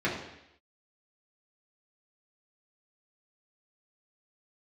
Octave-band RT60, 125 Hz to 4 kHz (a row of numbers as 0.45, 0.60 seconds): 0.75, 0.80, 0.80, 0.80, 0.90, 0.90 seconds